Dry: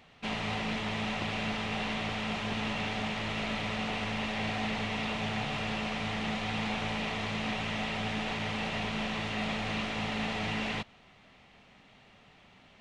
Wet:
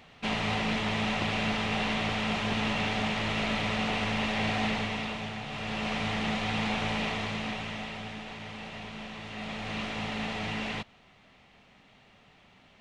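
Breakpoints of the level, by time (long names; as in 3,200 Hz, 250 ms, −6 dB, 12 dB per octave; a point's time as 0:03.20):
0:04.67 +4 dB
0:05.42 −5 dB
0:05.91 +3 dB
0:07.04 +3 dB
0:08.25 −7.5 dB
0:09.20 −7.5 dB
0:09.83 −0.5 dB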